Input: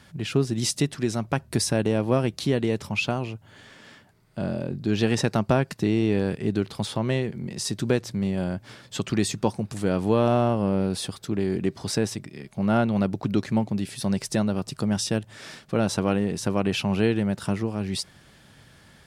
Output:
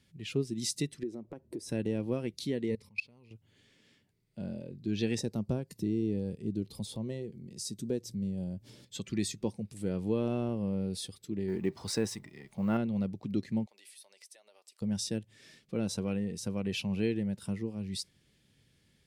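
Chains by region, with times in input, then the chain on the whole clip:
0:01.03–0:01.69: drawn EQ curve 140 Hz 0 dB, 320 Hz +14 dB, 1,200 Hz +4 dB, 2,700 Hz −6 dB + downward compressor 3 to 1, threshold −29 dBFS
0:02.70–0:03.31: EQ curve with evenly spaced ripples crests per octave 0.91, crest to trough 8 dB + output level in coarse steps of 22 dB
0:05.19–0:08.85: parametric band 2,000 Hz −9.5 dB 1.8 octaves + upward compression, threshold −27 dBFS
0:11.48–0:12.77: mu-law and A-law mismatch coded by mu + parametric band 1,100 Hz +10.5 dB 1.6 octaves
0:13.66–0:14.82: high-pass filter 610 Hz 24 dB per octave + downward compressor 12 to 1, threshold −38 dBFS
whole clip: noise reduction from a noise print of the clip's start 7 dB; flat-topped bell 1,000 Hz −11 dB; level −7.5 dB

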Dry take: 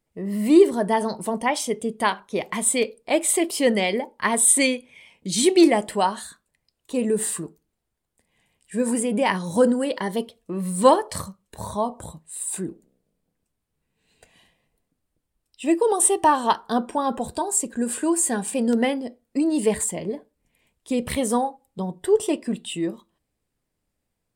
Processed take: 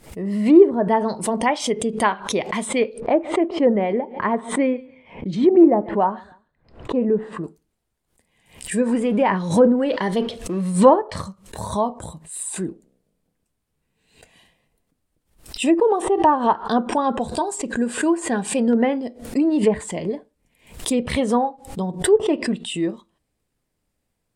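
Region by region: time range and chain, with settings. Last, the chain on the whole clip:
0:03.00–0:07.44: low-pass filter 1,200 Hz + repeating echo 143 ms, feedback 34%, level −23.5 dB
0:08.89–0:10.90: mu-law and A-law mismatch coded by mu + level that may fall only so fast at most 110 dB per second
whole clip: treble cut that deepens with the level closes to 1,100 Hz, closed at −14.5 dBFS; background raised ahead of every attack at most 130 dB per second; level +3 dB

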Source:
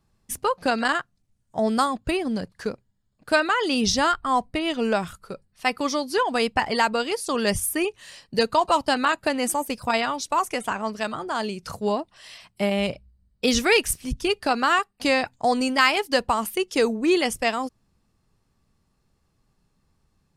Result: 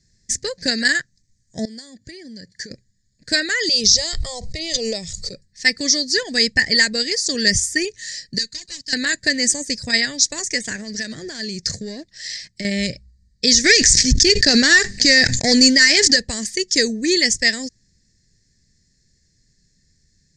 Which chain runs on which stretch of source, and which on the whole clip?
0:01.65–0:02.71: downward compressor, threshold −37 dBFS + notch comb filter 1,300 Hz
0:03.69–0:05.33: high-shelf EQ 10,000 Hz −10 dB + phaser with its sweep stopped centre 650 Hz, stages 4 + background raised ahead of every attack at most 26 dB per second
0:08.38–0:08.93: mid-hump overdrive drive 16 dB, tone 7,300 Hz, clips at −7 dBFS + guitar amp tone stack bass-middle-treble 6-0-2
0:10.75–0:12.65: high-shelf EQ 12,000 Hz −11.5 dB + leveller curve on the samples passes 1 + downward compressor 10 to 1, threshold −27 dBFS
0:13.64–0:16.16: low-pass filter 7,800 Hz 24 dB per octave + leveller curve on the samples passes 2 + level that may fall only so fast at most 39 dB per second
whole clip: drawn EQ curve 150 Hz 0 dB, 550 Hz −8 dB, 860 Hz −25 dB, 1,300 Hz −25 dB, 1,800 Hz +9 dB, 2,800 Hz −11 dB, 4,600 Hz +12 dB, 7,200 Hz +14 dB, 12,000 Hz −27 dB; boost into a limiter +6.5 dB; level −1 dB

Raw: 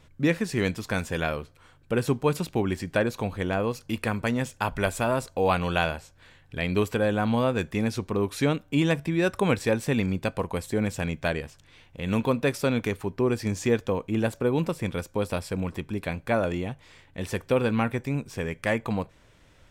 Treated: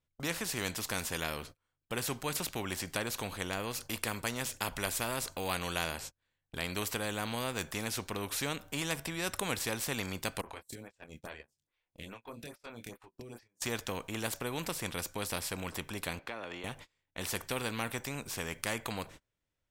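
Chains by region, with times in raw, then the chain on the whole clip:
0:10.41–0:13.62: downward compressor 5 to 1, threshold −39 dBFS + double-tracking delay 26 ms −6.5 dB + phaser with staggered stages 2.4 Hz
0:16.19–0:16.64: three-way crossover with the lows and the highs turned down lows −22 dB, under 260 Hz, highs −17 dB, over 4,400 Hz + downward compressor 3 to 1, threshold −36 dBFS
whole clip: noise gate −44 dBFS, range −36 dB; high-shelf EQ 6,100 Hz +6.5 dB; every bin compressed towards the loudest bin 2 to 1; level −5 dB

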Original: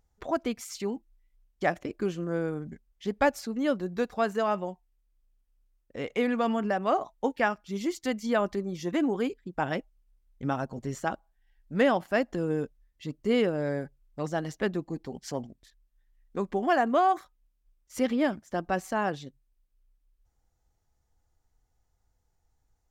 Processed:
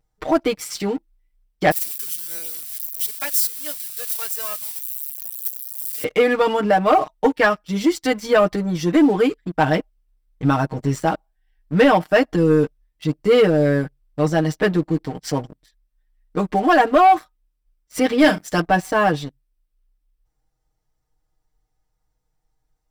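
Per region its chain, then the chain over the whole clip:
0:01.71–0:06.04: spike at every zero crossing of −28 dBFS + first difference
0:18.18–0:18.61: high-shelf EQ 2,200 Hz +12 dB + double-tracking delay 40 ms −11.5 dB
whole clip: comb filter 6.5 ms, depth 93%; leveller curve on the samples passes 2; notch filter 6,700 Hz, Q 8.1; level +2 dB

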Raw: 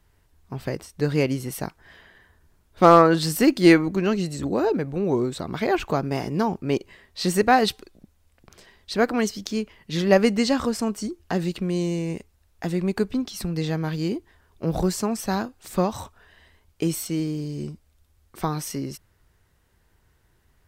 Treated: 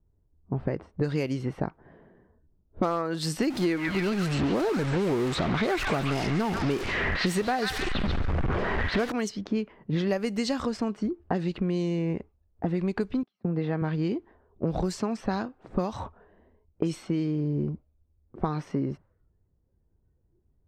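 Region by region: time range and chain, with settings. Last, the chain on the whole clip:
0:03.50–0:09.12: converter with a step at zero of −22 dBFS + high-shelf EQ 6,400 Hz −8 dB + echo through a band-pass that steps 139 ms, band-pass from 1,700 Hz, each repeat 0.7 octaves, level −0.5 dB
0:13.23–0:13.82: band-pass filter 120–4,500 Hz + low-shelf EQ 390 Hz −3.5 dB + noise gate −36 dBFS, range −29 dB
whole clip: low-pass that shuts in the quiet parts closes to 400 Hz, open at −16.5 dBFS; noise reduction from a noise print of the clip's start 12 dB; downward compressor 10 to 1, threshold −31 dBFS; level +7 dB

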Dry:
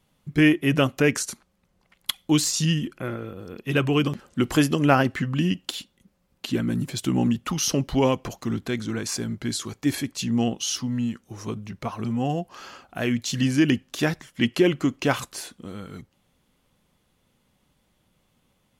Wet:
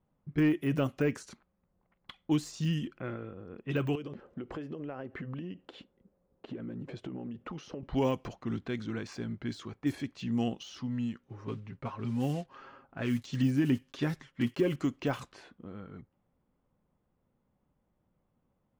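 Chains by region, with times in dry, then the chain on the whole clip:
0:03.95–0:07.83: parametric band 460 Hz +10.5 dB 1.1 octaves + downward compressor 16 to 1, threshold −28 dBFS
0:11.18–0:14.76: one scale factor per block 5 bits + parametric band 710 Hz −7 dB 0.22 octaves + comb filter 7.4 ms, depth 47%
whole clip: low-pass that shuts in the quiet parts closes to 1,100 Hz, open at −18 dBFS; de-essing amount 100%; level −7.5 dB

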